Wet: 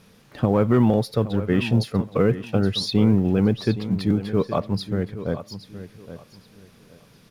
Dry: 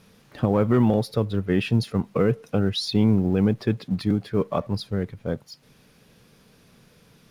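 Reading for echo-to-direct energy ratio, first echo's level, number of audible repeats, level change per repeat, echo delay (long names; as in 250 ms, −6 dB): −12.5 dB, −13.0 dB, 2, −12.5 dB, 819 ms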